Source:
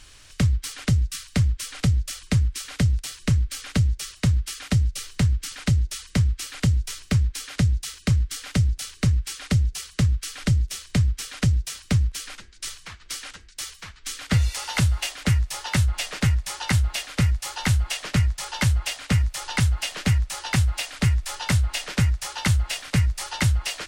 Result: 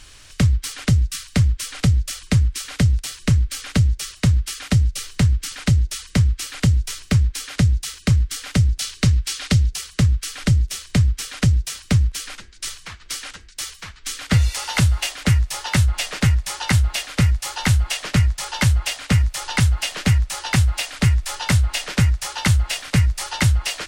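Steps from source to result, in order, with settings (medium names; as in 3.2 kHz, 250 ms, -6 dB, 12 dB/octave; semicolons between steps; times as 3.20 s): 8.70–9.76 s: dynamic bell 4.2 kHz, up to +5 dB, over -46 dBFS, Q 0.73; trim +4 dB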